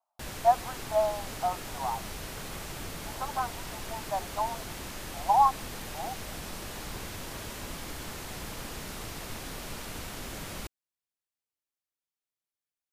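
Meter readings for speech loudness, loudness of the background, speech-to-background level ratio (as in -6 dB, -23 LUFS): -30.0 LUFS, -39.5 LUFS, 9.5 dB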